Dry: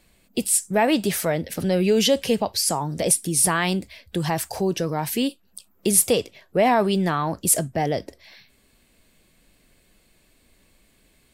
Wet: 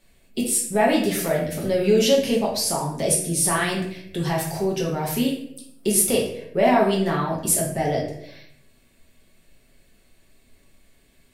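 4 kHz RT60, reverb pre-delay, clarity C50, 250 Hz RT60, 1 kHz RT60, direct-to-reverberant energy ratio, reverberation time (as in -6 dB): 0.50 s, 5 ms, 4.5 dB, 1.0 s, 0.60 s, -3.5 dB, 0.70 s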